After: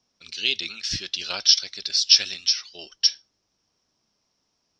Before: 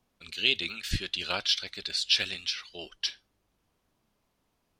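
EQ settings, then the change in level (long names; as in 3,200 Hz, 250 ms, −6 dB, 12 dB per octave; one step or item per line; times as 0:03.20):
low-pass with resonance 5,500 Hz, resonance Q 11
low-shelf EQ 63 Hz −12 dB
−1.5 dB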